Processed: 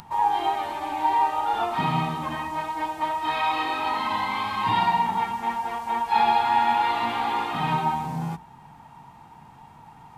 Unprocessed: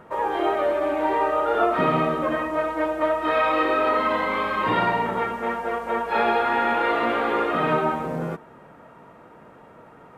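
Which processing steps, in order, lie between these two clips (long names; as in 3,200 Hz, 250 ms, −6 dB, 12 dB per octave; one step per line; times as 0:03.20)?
high-shelf EQ 2,900 Hz −8 dB
mains-hum notches 60/120/180 Hz
upward compression, threshold −43 dBFS
drawn EQ curve 140 Hz 0 dB, 580 Hz −24 dB, 840 Hz +4 dB, 1,300 Hz −13 dB, 4,400 Hz +8 dB
level +4.5 dB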